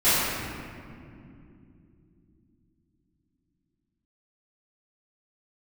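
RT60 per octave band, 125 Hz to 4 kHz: 4.6, 4.7, 3.4, 2.2, 2.0, 1.3 seconds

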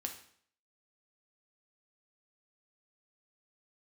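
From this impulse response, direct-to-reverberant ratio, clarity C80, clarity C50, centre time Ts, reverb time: 3.0 dB, 12.5 dB, 9.0 dB, 16 ms, 0.60 s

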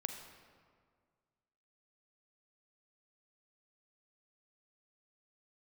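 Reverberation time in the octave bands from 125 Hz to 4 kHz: 2.1, 2.0, 1.9, 1.8, 1.5, 1.1 seconds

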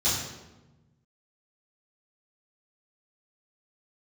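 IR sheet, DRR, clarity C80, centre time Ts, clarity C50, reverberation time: −12.5 dB, 4.5 dB, 65 ms, 1.5 dB, 1.1 s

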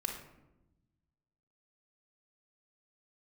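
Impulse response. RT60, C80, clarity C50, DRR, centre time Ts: 0.95 s, 9.0 dB, 5.5 dB, 3.0 dB, 29 ms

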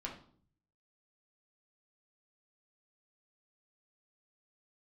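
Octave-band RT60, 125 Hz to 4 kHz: 0.95, 0.75, 0.60, 0.50, 0.40, 0.40 seconds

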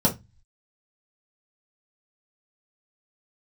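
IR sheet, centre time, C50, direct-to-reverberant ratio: 13 ms, 14.0 dB, −4.5 dB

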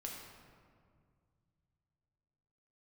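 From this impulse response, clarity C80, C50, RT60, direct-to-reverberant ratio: 3.5 dB, 1.5 dB, 2.1 s, −1.5 dB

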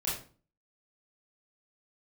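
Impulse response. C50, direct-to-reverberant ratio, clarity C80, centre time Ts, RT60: 4.0 dB, −8.0 dB, 9.5 dB, 42 ms, 0.40 s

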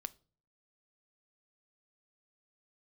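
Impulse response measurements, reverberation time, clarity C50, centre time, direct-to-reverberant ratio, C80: 0.40 s, 23.0 dB, 1 ms, 13.5 dB, 28.5 dB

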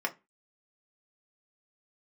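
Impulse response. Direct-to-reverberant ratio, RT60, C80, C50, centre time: 2.0 dB, 0.25 s, 27.0 dB, 19.0 dB, 6 ms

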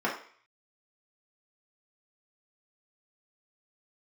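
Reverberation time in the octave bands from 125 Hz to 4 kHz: 0.40, 0.40, 0.45, 0.55, 0.55, 0.55 seconds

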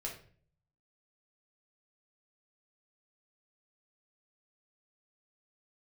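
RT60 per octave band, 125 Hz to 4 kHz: 0.95, 0.65, 0.55, 0.40, 0.45, 0.35 seconds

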